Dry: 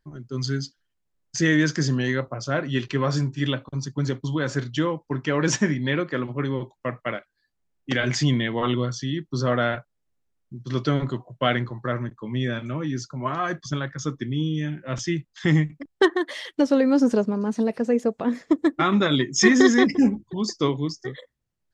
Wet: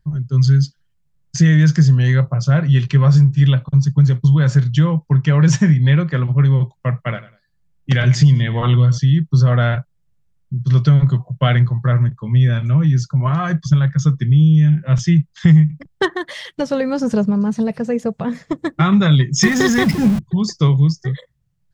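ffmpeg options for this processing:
ffmpeg -i in.wav -filter_complex "[0:a]asettb=1/sr,asplit=3[link_01][link_02][link_03];[link_01]atrim=end=7.064[link_04];[link_02]atrim=start=7.06:end=8.98,asetpts=PTS-STARTPTS,afade=type=in:duration=0.004:curve=qsin,afade=type=out:start_time=1.916:duration=0.004:curve=qsin,aecho=1:1:99|198:0.15|0.0344,atrim=end_sample=84672[link_05];[link_03]atrim=start=8.976[link_06];[link_04][link_05]acrossfade=duration=0.004:curve1=hsin:curve2=qsin[link_07];[link_07][link_06]acrossfade=duration=0.004:curve1=qsin:curve2=hsin,asettb=1/sr,asplit=3[link_08][link_09][link_10];[link_08]atrim=end=19.434[link_11];[link_09]atrim=start=19.43:end=20.19,asetpts=PTS-STARTPTS,afade=type=in:duration=0.004:curve=qsin,afade=type=out:start_time=0.756:duration=0.004:curve=qsin,aeval=exprs='val(0)+0.5*0.0562*sgn(val(0))':channel_layout=same[link_12];[link_10]atrim=start=20.186[link_13];[link_11][link_12]acrossfade=duration=0.004:curve1=hsin:curve2=qsin[link_14];[link_14][link_13]acrossfade=duration=0.004:curve1=qsin:curve2=hsin,lowshelf=frequency=210:width_type=q:width=3:gain=9.5,acompressor=threshold=-12dB:ratio=4,volume=3.5dB" out.wav

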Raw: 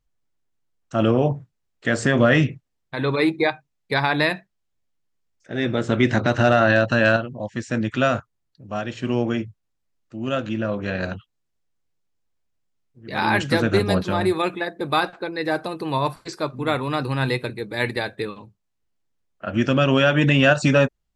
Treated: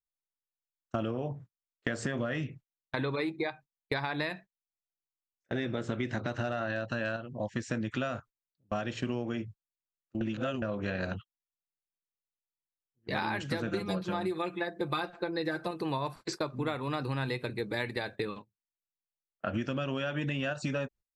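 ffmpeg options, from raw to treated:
ffmpeg -i in.wav -filter_complex "[0:a]asettb=1/sr,asplit=3[link_01][link_02][link_03];[link_01]atrim=end=13.674[link_04];[link_02]atrim=start=13.67:end=15.71,asetpts=PTS-STARTPTS,afade=type=in:duration=0.004:curve=qsin,afade=type=out:start_time=2.036:duration=0.004:curve=qsin,aecho=1:1:5.8:0.88,atrim=end_sample=89964[link_05];[link_03]atrim=start=15.706[link_06];[link_04][link_05]acrossfade=duration=0.004:curve1=hsin:curve2=qsin[link_07];[link_07][link_06]acrossfade=duration=0.004:curve1=qsin:curve2=hsin,asplit=3[link_08][link_09][link_10];[link_08]atrim=end=10.212[link_11];[link_09]atrim=start=10.208:end=10.622,asetpts=PTS-STARTPTS,areverse[link_12];[link_10]atrim=start=10.618[link_13];[link_11][link_12]acrossfade=duration=0.004:curve1=hsin:curve2=hsin[link_14];[link_14][link_13]acrossfade=duration=0.004:curve1=hsin:curve2=hsin,agate=range=-29dB:threshold=-36dB:ratio=16:detection=peak,equalizer=frequency=10000:width_type=o:width=0.32:gain=-4.5,acompressor=threshold=-29dB:ratio=16" out.wav

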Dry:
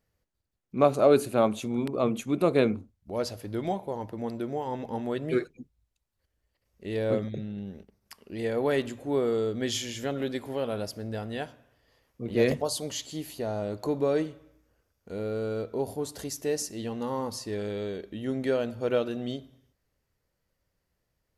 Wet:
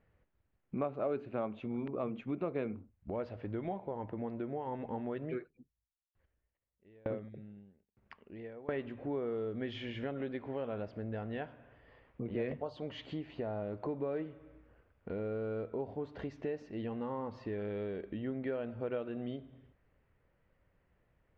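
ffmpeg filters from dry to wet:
ffmpeg -i in.wav -filter_complex "[0:a]asettb=1/sr,asplit=3[link_01][link_02][link_03];[link_01]atrim=end=5.244[link_04];[link_02]atrim=start=5.24:end=8.69,asetpts=PTS-STARTPTS,afade=type=in:duration=0.004:curve=qsin,afade=type=out:start_time=3.446:duration=0.004:curve=qsin,aeval=exprs='val(0)*pow(10,-40*if(lt(mod(1.1*n/s,1),2*abs(1.1)/1000),1-mod(1.1*n/s,1)/(2*abs(1.1)/1000),(mod(1.1*n/s,1)-2*abs(1.1)/1000)/(1-2*abs(1.1)/1000))/20)':channel_layout=same[link_05];[link_03]atrim=start=8.686[link_06];[link_04][link_05]acrossfade=duration=0.004:curve1=hsin:curve2=qsin[link_07];[link_07][link_06]acrossfade=duration=0.004:curve1=qsin:curve2=hsin,lowpass=frequency=2600:width=0.5412,lowpass=frequency=2600:width=1.3066,acompressor=threshold=-46dB:ratio=3,volume=6dB" out.wav

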